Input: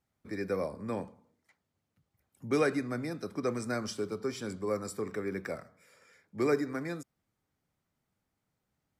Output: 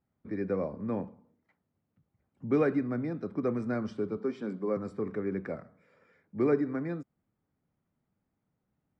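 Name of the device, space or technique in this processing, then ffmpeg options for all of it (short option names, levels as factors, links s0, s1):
phone in a pocket: -filter_complex "[0:a]asettb=1/sr,asplit=3[s0][s1][s2];[s0]atrim=end=4.174[s3];[s1]atrim=start=4.17:end=4.77,asetpts=PTS-STARTPTS,afade=t=in:d=0.004:c=qsin,afade=t=out:st=0.596:d=0.004:c=qsin,highpass=f=170:w=0.5412,highpass=f=170:w=1.3066[s4];[s2]atrim=start=4.766[s5];[s3][s4]acrossfade=d=0.004:c1=hsin:c2=qsin[s6];[s6][s5]acrossfade=d=0.004:c1=qsin:c2=hsin,lowpass=3400,equalizer=f=210:t=o:w=1.6:g=5,highshelf=f=2400:g=-11.5,equalizer=f=8900:t=o:w=0.57:g=3"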